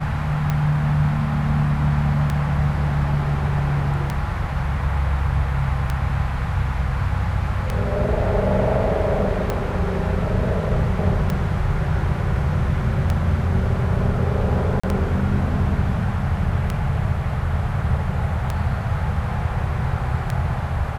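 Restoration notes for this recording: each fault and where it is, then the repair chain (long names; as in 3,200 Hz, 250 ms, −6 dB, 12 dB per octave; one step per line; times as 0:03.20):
scratch tick 33 1/3 rpm −10 dBFS
0:09.50: click
0:14.80–0:14.84: drop-out 35 ms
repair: click removal
repair the gap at 0:14.80, 35 ms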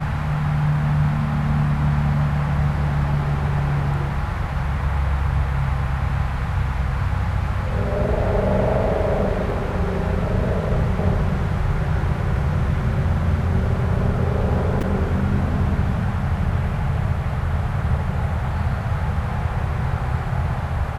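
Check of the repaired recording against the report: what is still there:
0:09.50: click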